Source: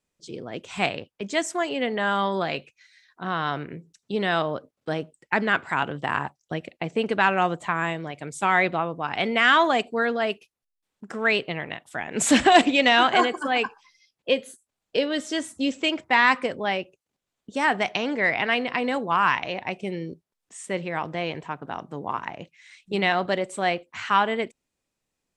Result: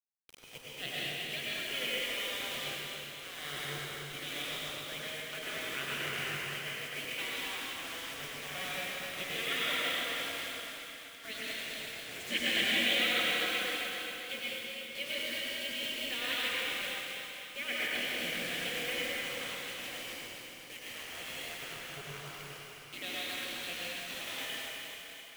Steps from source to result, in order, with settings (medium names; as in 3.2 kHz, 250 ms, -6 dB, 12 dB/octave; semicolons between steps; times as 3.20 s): vowel filter i; in parallel at -3 dB: gain riding within 3 dB; on the sum: spectral gate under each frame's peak -15 dB weak; bit crusher 8-bit; on a send: thinning echo 260 ms, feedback 63%, high-pass 970 Hz, level -7 dB; on the sum: plate-style reverb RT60 3.4 s, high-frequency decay 0.8×, pre-delay 85 ms, DRR -7.5 dB